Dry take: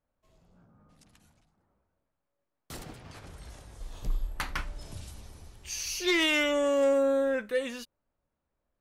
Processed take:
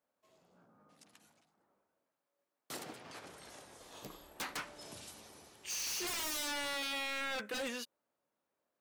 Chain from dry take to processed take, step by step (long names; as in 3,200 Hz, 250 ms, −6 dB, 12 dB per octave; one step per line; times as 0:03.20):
high-pass filter 280 Hz 12 dB per octave
wave folding −33.5 dBFS